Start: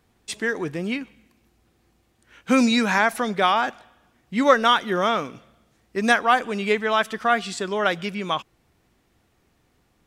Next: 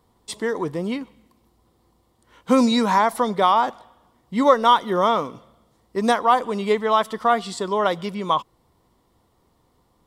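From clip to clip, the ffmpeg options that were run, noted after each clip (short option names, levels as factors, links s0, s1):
-filter_complex "[0:a]equalizer=f=500:t=o:w=0.33:g=4,equalizer=f=1000:t=o:w=0.33:g=10,equalizer=f=1600:t=o:w=0.33:g=-10,equalizer=f=2500:t=o:w=0.33:g=-12,equalizer=f=6300:t=o:w=0.33:g=-5,asplit=2[s0][s1];[s1]alimiter=limit=0.398:level=0:latency=1:release=239,volume=1.12[s2];[s0][s2]amix=inputs=2:normalize=0,volume=0.531"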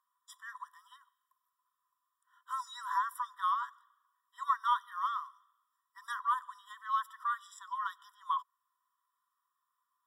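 -af "equalizer=f=3900:w=0.5:g=-14.5,afftfilt=real='re*eq(mod(floor(b*sr/1024/990),2),1)':imag='im*eq(mod(floor(b*sr/1024/990),2),1)':win_size=1024:overlap=0.75,volume=0.501"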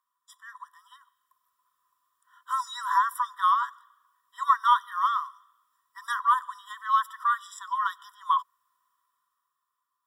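-af "dynaudnorm=f=190:g=11:m=2.82"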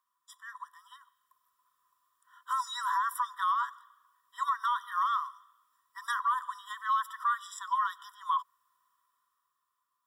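-af "alimiter=limit=0.0891:level=0:latency=1:release=102"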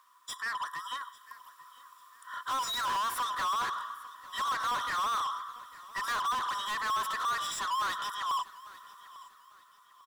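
-filter_complex "[0:a]asplit=2[s0][s1];[s1]highpass=f=720:p=1,volume=44.7,asoftclip=type=tanh:threshold=0.0944[s2];[s0][s2]amix=inputs=2:normalize=0,lowpass=f=5100:p=1,volume=0.501,aecho=1:1:848|1696|2544:0.106|0.036|0.0122,volume=0.531"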